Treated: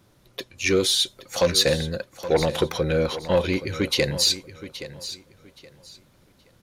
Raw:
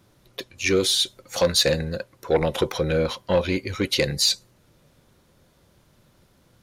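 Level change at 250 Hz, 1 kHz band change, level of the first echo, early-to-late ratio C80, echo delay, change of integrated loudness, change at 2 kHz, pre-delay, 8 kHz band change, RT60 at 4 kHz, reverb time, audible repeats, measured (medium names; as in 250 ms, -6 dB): 0.0 dB, 0.0 dB, -14.0 dB, no reverb, 822 ms, 0.0 dB, 0.0 dB, no reverb, 0.0 dB, no reverb, no reverb, 2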